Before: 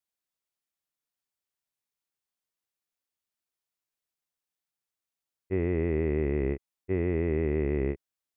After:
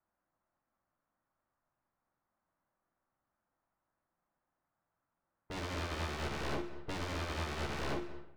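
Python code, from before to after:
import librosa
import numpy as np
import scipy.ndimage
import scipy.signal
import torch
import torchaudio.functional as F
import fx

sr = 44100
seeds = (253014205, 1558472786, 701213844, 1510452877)

p1 = fx.power_curve(x, sr, exponent=0.5)
p2 = scipy.signal.sosfilt(scipy.signal.butter(4, 1400.0, 'lowpass', fs=sr, output='sos'), p1)
p3 = fx.peak_eq(p2, sr, hz=430.0, db=-11.0, octaves=0.28)
p4 = fx.hum_notches(p3, sr, base_hz=50, count=7)
p5 = fx.leveller(p4, sr, passes=1)
p6 = 10.0 ** (-32.5 / 20.0) * (np.abs((p5 / 10.0 ** (-32.5 / 20.0) + 3.0) % 4.0 - 2.0) - 1.0)
p7 = p6 + fx.room_early_taps(p6, sr, ms=(48, 66), db=(-7.5, -14.5), dry=0)
p8 = fx.rev_freeverb(p7, sr, rt60_s=1.9, hf_ratio=0.5, predelay_ms=105, drr_db=9.0)
p9 = fx.upward_expand(p8, sr, threshold_db=-47.0, expansion=2.5)
y = F.gain(torch.from_numpy(p9), 1.0).numpy()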